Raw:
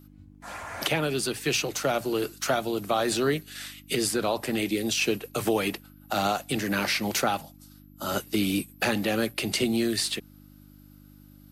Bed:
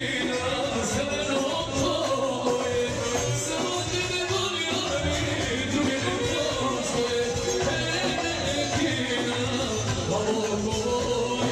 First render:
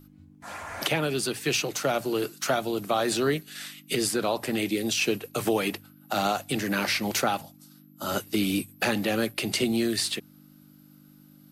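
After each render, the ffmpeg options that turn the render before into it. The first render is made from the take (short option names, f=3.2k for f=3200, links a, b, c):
-af "bandreject=f=50:t=h:w=4,bandreject=f=100:t=h:w=4"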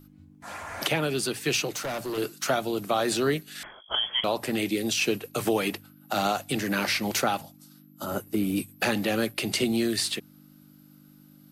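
-filter_complex "[0:a]asettb=1/sr,asplit=3[a][b][c];[a]atrim=end=1.744[d];[b]atrim=start=1.74:end=2.18,asetpts=PTS-STARTPTS,afade=t=in:d=0.004:c=qsin,afade=t=out:st=0.436:d=0.004:c=qsin,asoftclip=type=hard:threshold=-28.5dB[e];[c]atrim=start=2.176[f];[d][e]acrossfade=d=0.004:c1=hsin:c2=qsin[g];[g][f]acrossfade=d=0.004:c1=qsin:c2=hsin,asettb=1/sr,asplit=3[h][i][j];[h]atrim=end=3.634[k];[i]atrim=start=3.63:end=4.24,asetpts=PTS-STARTPTS,afade=t=in:d=0.004:c=qsin,afade=t=out:st=0.606:d=0.004:c=qsin,lowpass=f=3k:t=q:w=0.5098,lowpass=f=3k:t=q:w=0.6013,lowpass=f=3k:t=q:w=0.9,lowpass=f=3k:t=q:w=2.563,afreqshift=-3500[l];[j]atrim=start=4.236[m];[k][l]acrossfade=d=0.004:c1=hsin:c2=qsin[n];[n][m]acrossfade=d=0.004:c1=qsin:c2=hsin,asplit=3[o][p][q];[o]afade=t=out:st=8.04:d=0.02[r];[p]equalizer=f=4k:w=0.54:g=-13.5,afade=t=in:st=8.04:d=0.02,afade=t=out:st=8.56:d=0.02[s];[q]afade=t=in:st=8.56:d=0.02[t];[r][s][t]amix=inputs=3:normalize=0"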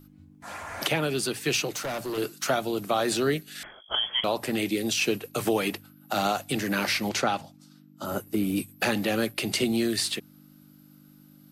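-filter_complex "[0:a]asettb=1/sr,asplit=3[a][b][c];[a]atrim=end=3.234[d];[b]atrim=start=3.23:end=3.92,asetpts=PTS-STARTPTS,afade=t=in:d=0.004:c=qsin,afade=t=out:st=0.686:d=0.004:c=qsin,equalizer=f=1k:t=o:w=0.35:g=-6.5[e];[c]atrim=start=3.916[f];[d][e]acrossfade=d=0.004:c1=hsin:c2=qsin[g];[g][f]acrossfade=d=0.004:c1=qsin:c2=hsin,asettb=1/sr,asplit=3[h][i][j];[h]atrim=end=7.094[k];[i]atrim=start=7.09:end=8.05,asetpts=PTS-STARTPTS,afade=t=in:d=0.004:c=qsin,afade=t=out:st=0.956:d=0.004:c=qsin,lowpass=6.9k[l];[j]atrim=start=8.046[m];[k][l]acrossfade=d=0.004:c1=hsin:c2=qsin[n];[n][m]acrossfade=d=0.004:c1=qsin:c2=hsin"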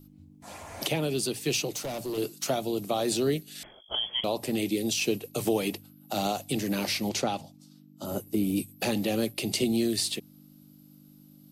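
-af "equalizer=f=1.5k:w=1.2:g=-13"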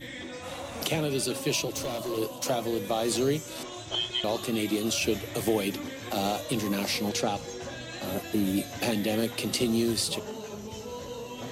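-filter_complex "[1:a]volume=-13dB[a];[0:a][a]amix=inputs=2:normalize=0"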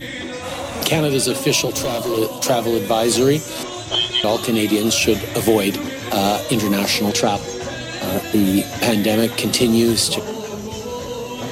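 -af "volume=11dB"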